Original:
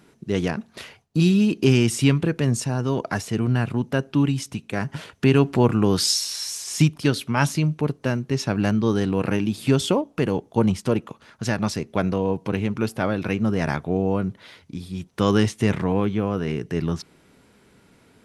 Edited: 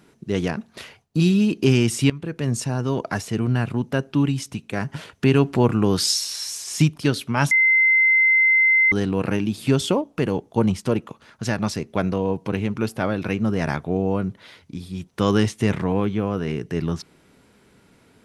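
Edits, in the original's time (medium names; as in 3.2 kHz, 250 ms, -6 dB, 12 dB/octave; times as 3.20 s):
2.10–2.61 s: fade in, from -17.5 dB
7.51–8.92 s: bleep 2.07 kHz -13 dBFS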